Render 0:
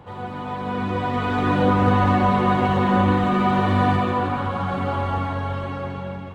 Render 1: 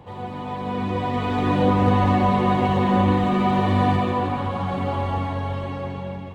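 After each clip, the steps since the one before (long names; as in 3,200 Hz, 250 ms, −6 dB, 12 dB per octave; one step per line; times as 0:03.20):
parametric band 1,400 Hz −9.5 dB 0.38 octaves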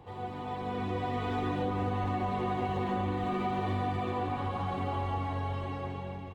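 comb filter 2.6 ms, depth 36%
downward compressor, threshold −21 dBFS, peak gain reduction 7.5 dB
level −7 dB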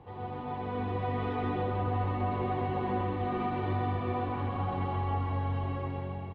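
high-frequency loss of the air 260 metres
single-tap delay 131 ms −4.5 dB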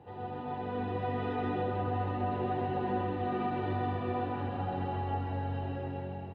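notch comb filter 1,100 Hz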